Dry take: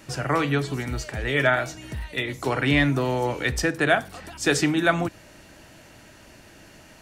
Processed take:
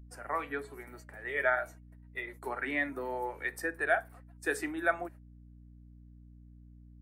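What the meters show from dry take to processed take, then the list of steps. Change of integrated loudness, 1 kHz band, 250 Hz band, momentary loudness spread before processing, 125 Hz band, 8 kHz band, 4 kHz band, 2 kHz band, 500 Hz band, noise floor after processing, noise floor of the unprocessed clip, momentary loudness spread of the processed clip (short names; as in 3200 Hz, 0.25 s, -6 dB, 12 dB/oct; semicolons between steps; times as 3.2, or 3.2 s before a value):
-10.0 dB, -8.5 dB, -16.0 dB, 10 LU, -24.0 dB, -16.0 dB, -22.0 dB, -8.0 dB, -10.0 dB, -54 dBFS, -50 dBFS, 14 LU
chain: HPF 460 Hz 12 dB/oct; band shelf 4400 Hz -15 dB; gate -40 dBFS, range -31 dB; hum 60 Hz, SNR 10 dB; spectral noise reduction 8 dB; gain -6.5 dB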